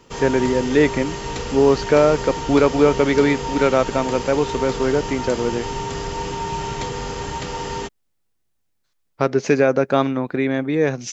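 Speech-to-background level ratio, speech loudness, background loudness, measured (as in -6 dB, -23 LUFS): 8.5 dB, -19.0 LUFS, -27.5 LUFS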